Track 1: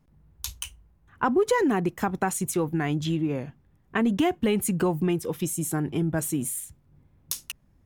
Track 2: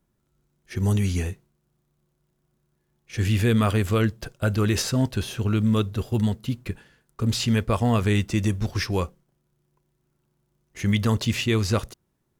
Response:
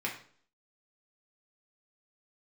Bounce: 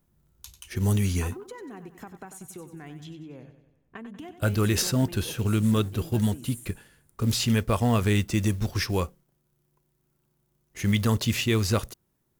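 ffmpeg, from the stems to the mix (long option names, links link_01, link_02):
-filter_complex "[0:a]acompressor=threshold=-29dB:ratio=6,volume=-10dB,asplit=2[link_01][link_02];[link_02]volume=-11dB[link_03];[1:a]highshelf=frequency=11000:gain=11.5,acrusher=bits=7:mode=log:mix=0:aa=0.000001,volume=-1.5dB,asplit=3[link_04][link_05][link_06];[link_04]atrim=end=3.04,asetpts=PTS-STARTPTS,afade=type=out:start_time=3.036:duration=0.004:curve=hsin[link_07];[link_05]atrim=start=3.04:end=4.39,asetpts=PTS-STARTPTS,volume=0[link_08];[link_06]atrim=start=4.39,asetpts=PTS-STARTPTS,afade=type=in:duration=0.004:curve=hsin[link_09];[link_07][link_08][link_09]concat=n=3:v=0:a=1[link_10];[link_03]aecho=0:1:94|188|282|376|470|564|658|752:1|0.52|0.27|0.141|0.0731|0.038|0.0198|0.0103[link_11];[link_01][link_10][link_11]amix=inputs=3:normalize=0"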